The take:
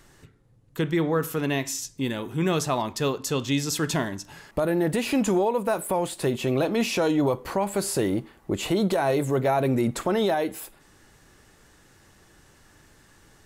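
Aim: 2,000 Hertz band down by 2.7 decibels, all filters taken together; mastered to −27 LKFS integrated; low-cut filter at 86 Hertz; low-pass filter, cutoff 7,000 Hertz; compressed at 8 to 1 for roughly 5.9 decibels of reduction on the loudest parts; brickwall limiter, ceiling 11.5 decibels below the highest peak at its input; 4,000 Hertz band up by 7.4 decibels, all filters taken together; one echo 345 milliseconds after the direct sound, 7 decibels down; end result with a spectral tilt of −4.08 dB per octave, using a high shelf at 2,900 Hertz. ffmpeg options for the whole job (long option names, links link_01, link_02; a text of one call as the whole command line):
ffmpeg -i in.wav -af "highpass=86,lowpass=7000,equalizer=frequency=2000:width_type=o:gain=-9,highshelf=frequency=2900:gain=5,equalizer=frequency=4000:width_type=o:gain=8.5,acompressor=threshold=-25dB:ratio=8,alimiter=level_in=2.5dB:limit=-24dB:level=0:latency=1,volume=-2.5dB,aecho=1:1:345:0.447,volume=7.5dB" out.wav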